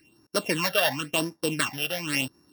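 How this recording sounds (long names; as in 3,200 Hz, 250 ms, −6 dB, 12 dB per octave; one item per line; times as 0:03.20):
a buzz of ramps at a fixed pitch in blocks of 16 samples
phaser sweep stages 8, 0.94 Hz, lowest notch 280–2,900 Hz
Ogg Vorbis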